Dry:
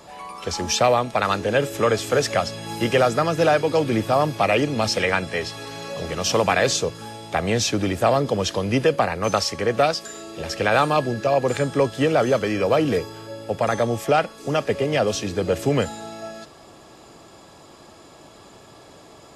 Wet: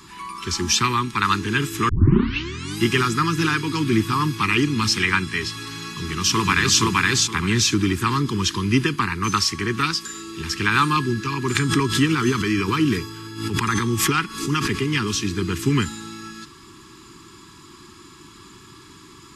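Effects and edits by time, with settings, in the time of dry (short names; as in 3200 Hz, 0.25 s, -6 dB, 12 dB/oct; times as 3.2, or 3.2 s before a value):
1.89 tape start 0.92 s
5.89–6.8 echo throw 0.47 s, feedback 20%, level 0 dB
11.55–14.82 backwards sustainer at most 84 dB/s
whole clip: elliptic band-stop 370–1000 Hz, stop band 60 dB; gain +4 dB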